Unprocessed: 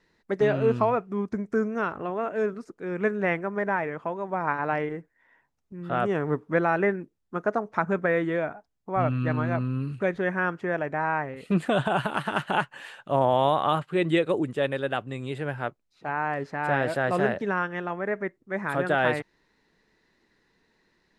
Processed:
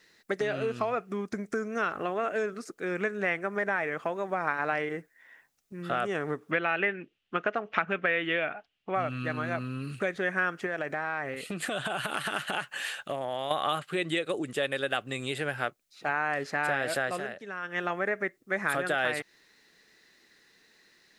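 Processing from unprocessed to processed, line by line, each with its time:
0:06.51–0:08.95: low-pass with resonance 2,900 Hz, resonance Q 5.4
0:10.66–0:13.51: downward compressor, threshold −30 dBFS
0:16.97–0:17.89: duck −15 dB, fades 0.27 s
whole clip: parametric band 950 Hz −10 dB 0.22 octaves; downward compressor, threshold −29 dBFS; spectral tilt +3 dB per octave; level +5 dB

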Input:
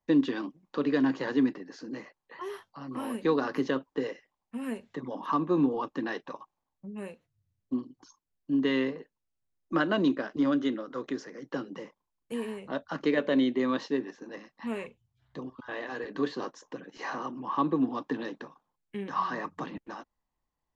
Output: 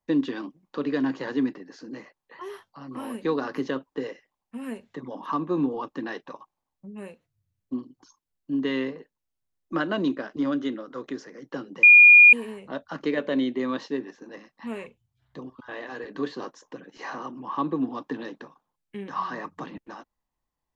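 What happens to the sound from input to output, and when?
0:11.83–0:12.33: beep over 2,430 Hz −8 dBFS

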